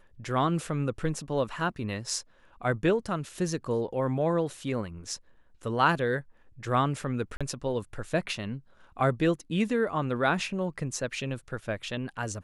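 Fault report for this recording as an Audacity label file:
7.370000	7.410000	gap 36 ms

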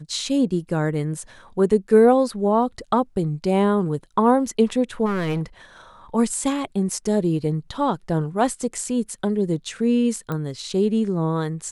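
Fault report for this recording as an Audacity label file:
5.050000	5.430000	clipped -20 dBFS
10.320000	10.320000	pop -16 dBFS

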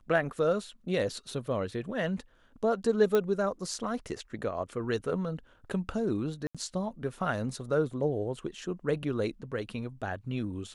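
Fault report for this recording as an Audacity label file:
3.150000	3.150000	pop -15 dBFS
6.470000	6.550000	gap 76 ms

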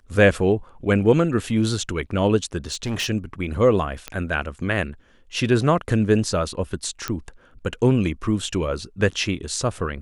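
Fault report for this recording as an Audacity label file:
2.580000	3.100000	clipped -21.5 dBFS
4.080000	4.080000	pop -13 dBFS
7.080000	7.080000	pop -9 dBFS

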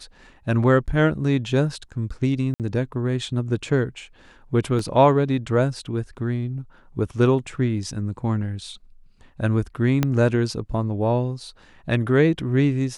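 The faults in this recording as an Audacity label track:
2.540000	2.600000	gap 58 ms
4.790000	4.790000	gap 3.1 ms
10.030000	10.030000	pop -7 dBFS

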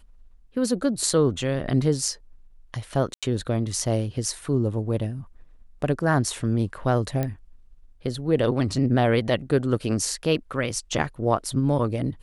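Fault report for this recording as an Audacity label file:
3.140000	3.230000	gap 86 ms
7.230000	7.230000	pop -14 dBFS

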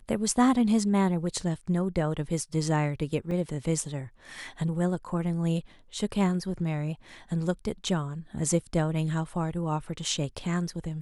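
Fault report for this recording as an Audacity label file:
3.310000	3.310000	gap 3 ms

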